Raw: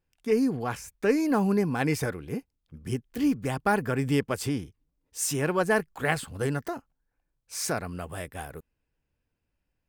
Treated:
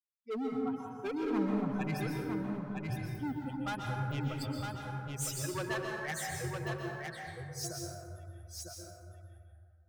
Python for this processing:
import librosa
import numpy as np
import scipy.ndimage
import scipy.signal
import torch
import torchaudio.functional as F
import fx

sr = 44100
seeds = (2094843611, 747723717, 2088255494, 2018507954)

p1 = fx.bin_expand(x, sr, power=3.0)
p2 = fx.dynamic_eq(p1, sr, hz=590.0, q=1.8, threshold_db=-43.0, ratio=4.0, max_db=-5)
p3 = 10.0 ** (-31.5 / 20.0) * np.tanh(p2 / 10.0 ** (-31.5 / 20.0))
p4 = p2 + F.gain(torch.from_numpy(p3), -6.0).numpy()
p5 = fx.noise_reduce_blind(p4, sr, reduce_db=7)
p6 = np.clip(10.0 ** (29.0 / 20.0) * p5, -1.0, 1.0) / 10.0 ** (29.0 / 20.0)
p7 = p6 + fx.echo_single(p6, sr, ms=959, db=-4.5, dry=0)
p8 = fx.rev_plate(p7, sr, seeds[0], rt60_s=2.0, hf_ratio=0.4, predelay_ms=110, drr_db=-0.5)
y = F.gain(torch.from_numpy(p8), -5.0).numpy()